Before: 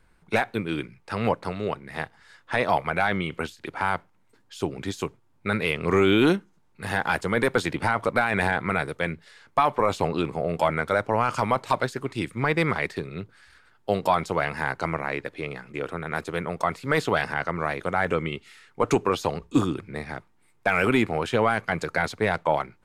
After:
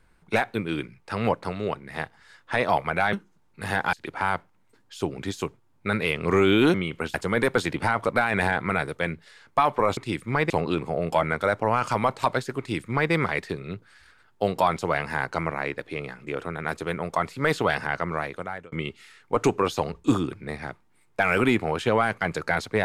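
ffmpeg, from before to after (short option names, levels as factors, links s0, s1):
-filter_complex "[0:a]asplit=8[s0][s1][s2][s3][s4][s5][s6][s7];[s0]atrim=end=3.132[s8];[s1]atrim=start=6.338:end=7.142[s9];[s2]atrim=start=3.528:end=6.342[s10];[s3]atrim=start=3.128:end=3.532[s11];[s4]atrim=start=7.138:end=9.972[s12];[s5]atrim=start=12.058:end=12.592[s13];[s6]atrim=start=9.968:end=18.19,asetpts=PTS-STARTPTS,afade=t=out:st=7.592:d=0.63[s14];[s7]atrim=start=18.19,asetpts=PTS-STARTPTS,afade=t=in:d=0.004:c=hsin[s15];[s8][s9]acrossfade=d=0.004:c1=hsin:c2=hsin[s16];[s16][s10]acrossfade=d=0.004:c1=hsin:c2=hsin[s17];[s17][s11]acrossfade=d=0.004:c1=hsin:c2=hsin[s18];[s18][s12]acrossfade=d=0.004:c1=hsin:c2=hsin[s19];[s19][s13]acrossfade=d=0.004:c1=hsin:c2=hsin[s20];[s14][s15]concat=n=2:v=0:a=1[s21];[s20][s21]acrossfade=d=0.004:c1=hsin:c2=hsin"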